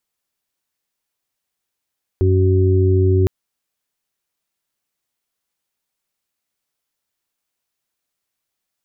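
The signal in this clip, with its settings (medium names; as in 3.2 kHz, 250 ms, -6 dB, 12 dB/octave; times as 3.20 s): steady additive tone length 1.06 s, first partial 93.7 Hz, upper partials -18.5/-12/-4.5 dB, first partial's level -12.5 dB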